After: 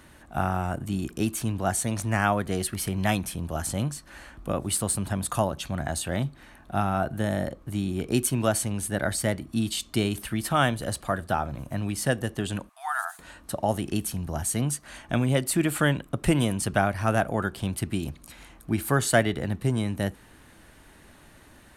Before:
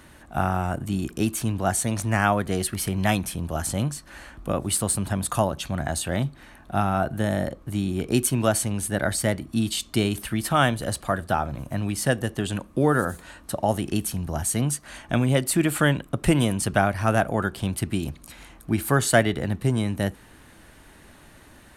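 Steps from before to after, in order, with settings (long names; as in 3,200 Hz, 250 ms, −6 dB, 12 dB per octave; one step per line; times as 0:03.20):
0:12.69–0:13.19: linear-phase brick-wall high-pass 650 Hz
level −2.5 dB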